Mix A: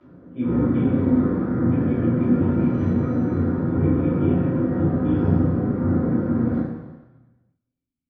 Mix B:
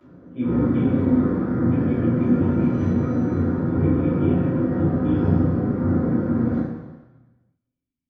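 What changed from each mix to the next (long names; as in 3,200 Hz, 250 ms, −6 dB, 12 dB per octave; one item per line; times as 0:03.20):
master: remove high-frequency loss of the air 100 metres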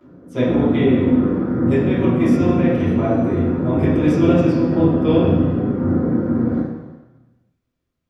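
speech: remove formant resonators in series i
master: add parametric band 380 Hz +4 dB 1.9 octaves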